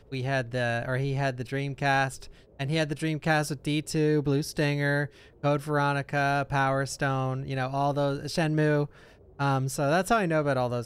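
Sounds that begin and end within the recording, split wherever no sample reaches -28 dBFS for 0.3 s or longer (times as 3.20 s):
2.60–5.06 s
5.44–8.85 s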